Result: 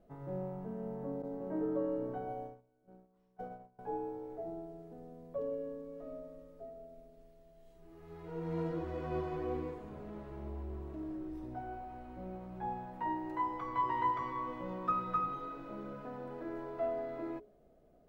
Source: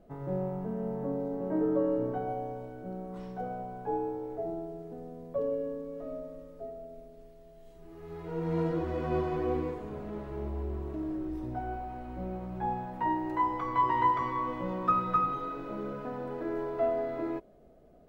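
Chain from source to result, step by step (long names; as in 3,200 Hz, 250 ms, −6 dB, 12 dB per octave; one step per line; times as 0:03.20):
0:01.22–0:03.79: noise gate −36 dBFS, range −24 dB
mains-hum notches 60/120/180/240/300/360/420 Hz
level −6.5 dB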